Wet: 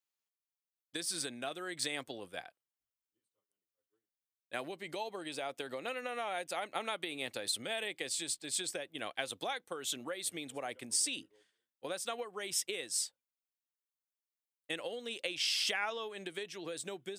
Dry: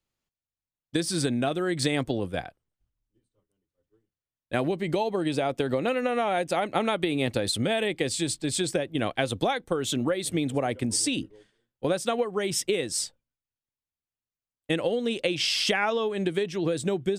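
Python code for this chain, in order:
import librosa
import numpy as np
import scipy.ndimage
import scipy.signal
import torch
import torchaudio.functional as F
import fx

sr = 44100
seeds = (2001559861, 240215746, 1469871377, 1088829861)

y = fx.highpass(x, sr, hz=1100.0, slope=6)
y = fx.high_shelf(y, sr, hz=11000.0, db=7.5)
y = y * librosa.db_to_amplitude(-7.0)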